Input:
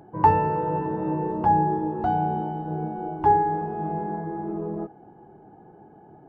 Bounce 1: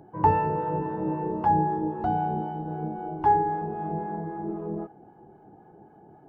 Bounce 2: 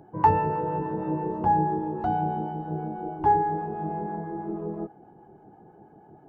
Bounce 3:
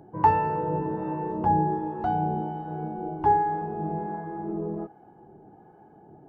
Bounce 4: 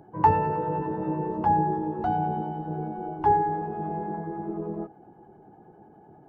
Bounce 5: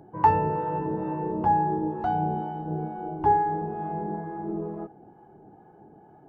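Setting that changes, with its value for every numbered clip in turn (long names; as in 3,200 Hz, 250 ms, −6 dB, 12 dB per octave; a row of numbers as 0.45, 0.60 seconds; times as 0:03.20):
two-band tremolo in antiphase, speed: 3.8, 6.2, 1.3, 10, 2.2 Hertz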